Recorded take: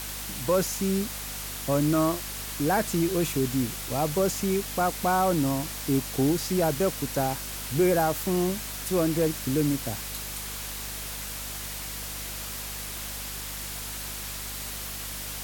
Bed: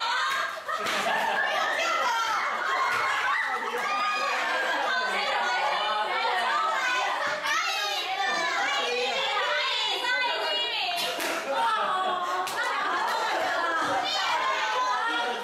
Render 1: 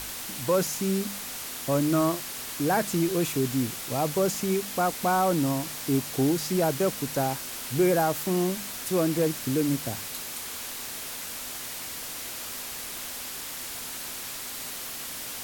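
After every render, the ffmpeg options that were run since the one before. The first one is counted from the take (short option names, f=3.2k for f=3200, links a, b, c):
-af "bandreject=f=50:t=h:w=4,bandreject=f=100:t=h:w=4,bandreject=f=150:t=h:w=4,bandreject=f=200:t=h:w=4"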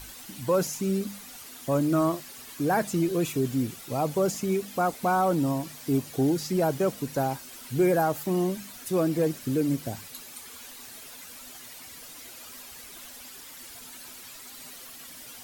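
-af "afftdn=nr=11:nf=-37"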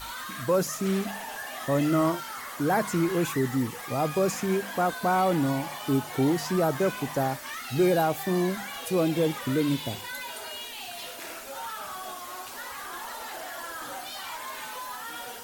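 -filter_complex "[1:a]volume=-12dB[a];[0:a][a]amix=inputs=2:normalize=0"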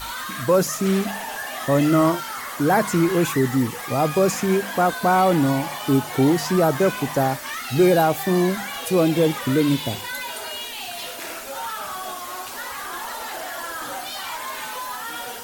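-af "volume=6.5dB"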